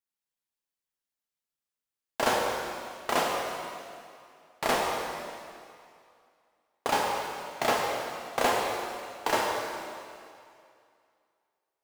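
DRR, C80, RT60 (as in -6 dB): -2.0 dB, 1.5 dB, 2.4 s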